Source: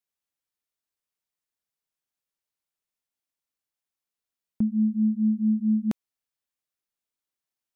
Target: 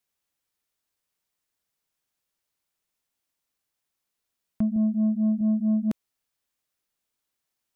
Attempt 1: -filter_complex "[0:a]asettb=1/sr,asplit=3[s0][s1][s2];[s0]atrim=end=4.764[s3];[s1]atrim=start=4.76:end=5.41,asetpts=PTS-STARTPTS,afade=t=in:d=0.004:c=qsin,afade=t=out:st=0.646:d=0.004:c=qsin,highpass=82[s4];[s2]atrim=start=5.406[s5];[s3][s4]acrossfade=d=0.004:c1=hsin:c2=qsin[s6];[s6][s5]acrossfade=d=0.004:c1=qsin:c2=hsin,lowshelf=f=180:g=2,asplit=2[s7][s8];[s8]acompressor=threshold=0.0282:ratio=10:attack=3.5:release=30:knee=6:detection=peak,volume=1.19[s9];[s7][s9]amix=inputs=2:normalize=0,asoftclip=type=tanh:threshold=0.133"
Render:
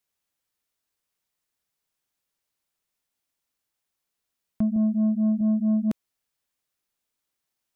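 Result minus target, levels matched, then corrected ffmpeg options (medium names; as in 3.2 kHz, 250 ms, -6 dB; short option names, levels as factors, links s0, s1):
compression: peak gain reduction -7 dB
-filter_complex "[0:a]asettb=1/sr,asplit=3[s0][s1][s2];[s0]atrim=end=4.764[s3];[s1]atrim=start=4.76:end=5.41,asetpts=PTS-STARTPTS,afade=t=in:d=0.004:c=qsin,afade=t=out:st=0.646:d=0.004:c=qsin,highpass=82[s4];[s2]atrim=start=5.406[s5];[s3][s4]acrossfade=d=0.004:c1=hsin:c2=qsin[s6];[s6][s5]acrossfade=d=0.004:c1=qsin:c2=hsin,lowshelf=f=180:g=2,asplit=2[s7][s8];[s8]acompressor=threshold=0.0112:ratio=10:attack=3.5:release=30:knee=6:detection=peak,volume=1.19[s9];[s7][s9]amix=inputs=2:normalize=0,asoftclip=type=tanh:threshold=0.133"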